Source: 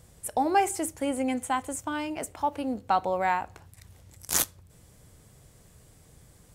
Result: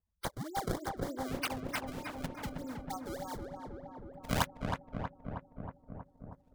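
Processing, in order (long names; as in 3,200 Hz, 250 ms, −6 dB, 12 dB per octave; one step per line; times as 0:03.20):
camcorder AGC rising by 6.1 dB per second
gate on every frequency bin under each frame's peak −10 dB strong
first-order pre-emphasis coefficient 0.9
noise gate −60 dBFS, range −9 dB
parametric band 2,500 Hz +14.5 dB 0.42 octaves
comb filter 3.6 ms, depth 99%
in parallel at 0 dB: downward compressor, threshold −32 dBFS, peak gain reduction 13.5 dB
on the sum: sample-and-hold swept by an LFO 28×, swing 160% 3.3 Hz
auto-filter notch square 0.39 Hz 360–2,600 Hz
on a send: feedback echo with a low-pass in the loop 318 ms, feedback 77%, low-pass 1,500 Hz, level −3.5 dB
on the sum: level −7.5 dB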